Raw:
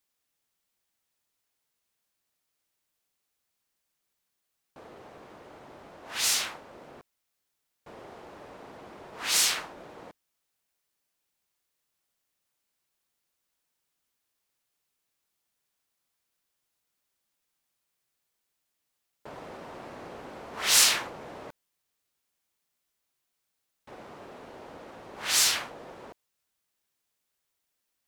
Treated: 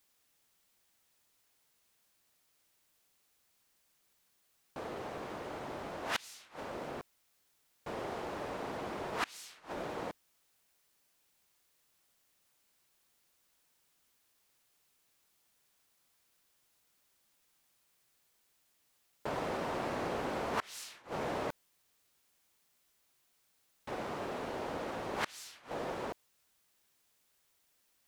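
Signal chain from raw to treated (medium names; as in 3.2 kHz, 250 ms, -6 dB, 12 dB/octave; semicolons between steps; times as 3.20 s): in parallel at -2.5 dB: compression, threshold -35 dBFS, peak gain reduction 17.5 dB; on the sum: inverted gate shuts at -22 dBFS, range -30 dB; trim +2 dB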